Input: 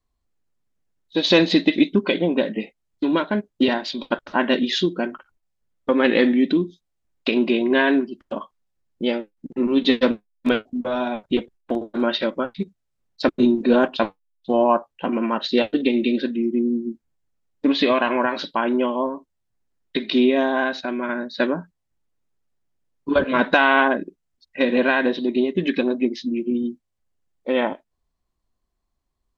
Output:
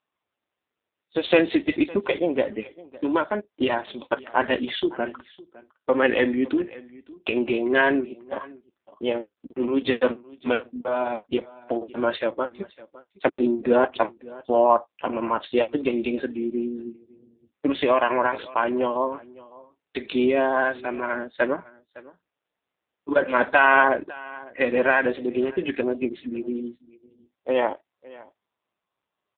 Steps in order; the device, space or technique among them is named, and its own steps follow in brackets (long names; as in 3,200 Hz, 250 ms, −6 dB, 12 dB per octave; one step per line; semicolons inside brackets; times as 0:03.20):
satellite phone (band-pass filter 380–3,300 Hz; single-tap delay 558 ms −21 dB; level +1.5 dB; AMR narrowband 5.9 kbit/s 8,000 Hz)